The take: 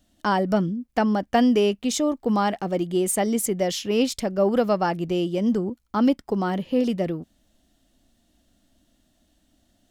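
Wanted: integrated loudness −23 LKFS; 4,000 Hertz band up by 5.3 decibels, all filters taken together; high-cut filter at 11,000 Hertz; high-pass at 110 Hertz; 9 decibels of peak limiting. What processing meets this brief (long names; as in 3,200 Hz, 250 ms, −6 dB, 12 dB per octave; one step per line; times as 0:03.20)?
high-pass filter 110 Hz
low-pass filter 11,000 Hz
parametric band 4,000 Hz +7.5 dB
level +2.5 dB
brickwall limiter −14 dBFS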